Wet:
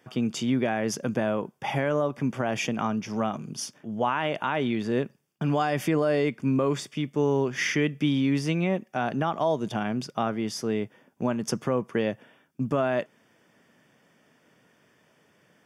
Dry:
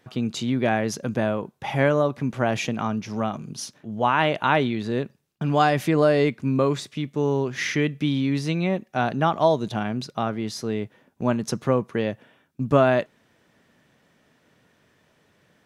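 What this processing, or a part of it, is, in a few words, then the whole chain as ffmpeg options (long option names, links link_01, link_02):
PA system with an anti-feedback notch: -af "highpass=130,asuperstop=centerf=4000:order=4:qfactor=5.6,alimiter=limit=-14.5dB:level=0:latency=1:release=159"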